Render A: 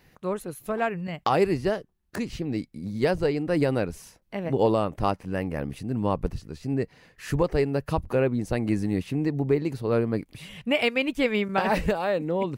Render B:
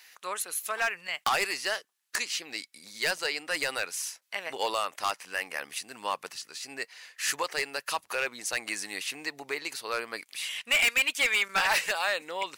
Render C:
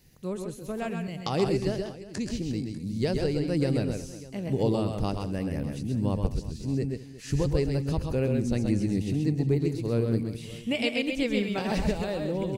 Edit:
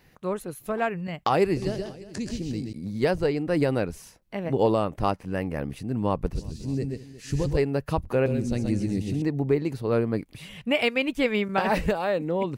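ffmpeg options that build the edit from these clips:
-filter_complex "[2:a]asplit=3[a][b][c];[0:a]asplit=4[d][e][f][g];[d]atrim=end=1.572[h];[a]atrim=start=1.568:end=2.732[i];[e]atrim=start=2.728:end=6.352[j];[b]atrim=start=6.348:end=7.572[k];[f]atrim=start=7.568:end=8.262[l];[c]atrim=start=8.258:end=9.222[m];[g]atrim=start=9.218[n];[h][i]acrossfade=d=0.004:c1=hsin:c2=hsin[o];[o][j]acrossfade=d=0.004:c1=hsin:c2=hsin[p];[p][k]acrossfade=d=0.004:c1=hsin:c2=hsin[q];[q][l]acrossfade=d=0.004:c1=hsin:c2=hsin[r];[r][m]acrossfade=d=0.004:c1=hsin:c2=hsin[s];[s][n]acrossfade=d=0.004:c1=hsin:c2=hsin"

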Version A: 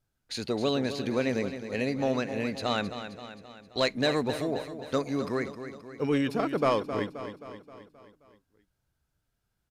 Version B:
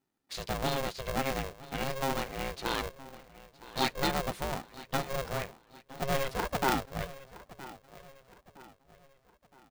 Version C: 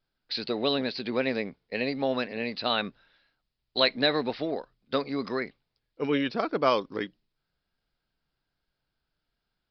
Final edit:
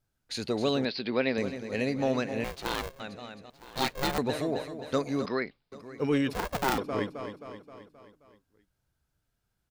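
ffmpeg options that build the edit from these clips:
-filter_complex "[2:a]asplit=2[a][b];[1:a]asplit=3[c][d][e];[0:a]asplit=6[f][g][h][i][j][k];[f]atrim=end=0.852[l];[a]atrim=start=0.848:end=1.382[m];[g]atrim=start=1.378:end=2.442[n];[c]atrim=start=2.438:end=3.002[o];[h]atrim=start=2.998:end=3.502[p];[d]atrim=start=3.498:end=4.182[q];[i]atrim=start=4.178:end=5.262[r];[b]atrim=start=5.258:end=5.722[s];[j]atrim=start=5.718:end=6.332[t];[e]atrim=start=6.328:end=6.782[u];[k]atrim=start=6.778[v];[l][m]acrossfade=d=0.004:c1=hsin:c2=hsin[w];[w][n]acrossfade=d=0.004:c1=hsin:c2=hsin[x];[x][o]acrossfade=d=0.004:c1=hsin:c2=hsin[y];[y][p]acrossfade=d=0.004:c1=hsin:c2=hsin[z];[z][q]acrossfade=d=0.004:c1=hsin:c2=hsin[aa];[aa][r]acrossfade=d=0.004:c1=hsin:c2=hsin[ab];[ab][s]acrossfade=d=0.004:c1=hsin:c2=hsin[ac];[ac][t]acrossfade=d=0.004:c1=hsin:c2=hsin[ad];[ad][u]acrossfade=d=0.004:c1=hsin:c2=hsin[ae];[ae][v]acrossfade=d=0.004:c1=hsin:c2=hsin"

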